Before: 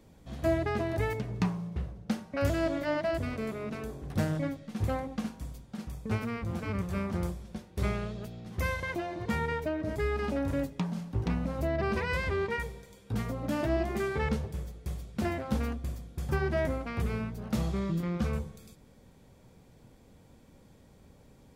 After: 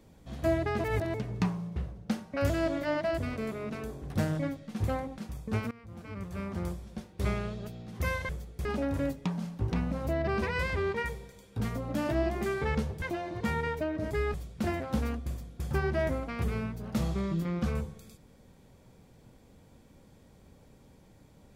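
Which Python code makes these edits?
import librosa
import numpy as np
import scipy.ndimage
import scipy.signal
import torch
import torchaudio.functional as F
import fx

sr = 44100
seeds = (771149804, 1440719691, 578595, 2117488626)

y = fx.edit(x, sr, fx.reverse_span(start_s=0.84, length_s=0.3),
    fx.cut(start_s=5.18, length_s=0.58),
    fx.fade_in_from(start_s=6.29, length_s=1.23, floor_db=-19.5),
    fx.swap(start_s=8.87, length_s=1.32, other_s=14.56, other_length_s=0.36), tone=tone)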